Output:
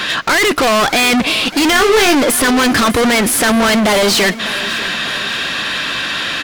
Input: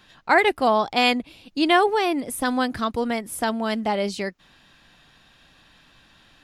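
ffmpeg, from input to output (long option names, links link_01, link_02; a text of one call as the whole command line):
ffmpeg -i in.wav -filter_complex "[0:a]equalizer=frequency=820:width=3.3:gain=-9.5,asplit=2[link_01][link_02];[link_02]highpass=frequency=720:poles=1,volume=38dB,asoftclip=type=tanh:threshold=-6dB[link_03];[link_01][link_03]amix=inputs=2:normalize=0,lowpass=frequency=3700:poles=1,volume=-6dB,asoftclip=type=tanh:threshold=-20dB,asettb=1/sr,asplit=3[link_04][link_05][link_06];[link_04]atrim=end=1.734[link_07];[link_05]atrim=start=1.73:end=2.15,asetpts=PTS-STARTPTS,afade=type=in:duration=0.004:curve=qsin,afade=type=out:start_time=0.416:duration=0.004:curve=qsin,asplit=2[link_08][link_09];[link_09]adelay=23,volume=-5dB[link_10];[link_08][link_10]amix=inputs=2:normalize=0,atrim=end_sample=18522[link_11];[link_06]atrim=start=2.146[link_12];[link_07][link_11]acrossfade=duration=0.004:curve1=hsin:curve2=qsin[link_13];[link_13][link_12]acrossfade=duration=0.004:curve1=qsin:curve2=hsin,aecho=1:1:597|1194|1791|2388:0.15|0.0718|0.0345|0.0165,volume=9dB" out.wav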